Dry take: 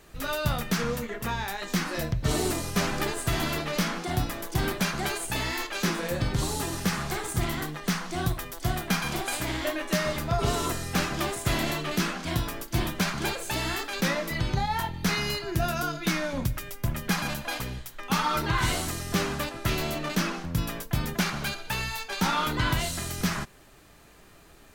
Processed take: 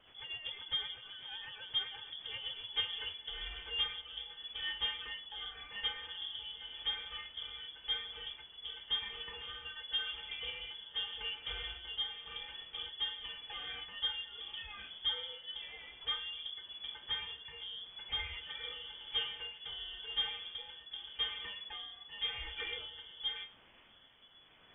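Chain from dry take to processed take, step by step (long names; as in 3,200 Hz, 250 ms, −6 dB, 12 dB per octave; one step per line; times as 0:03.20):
notch filter 810 Hz, Q 12
stiff-string resonator 190 Hz, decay 0.28 s, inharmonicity 0.008
background noise white −55 dBFS
rotating-speaker cabinet horn 8 Hz, later 0.9 Hz, at 0:02.38
voice inversion scrambler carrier 3,400 Hz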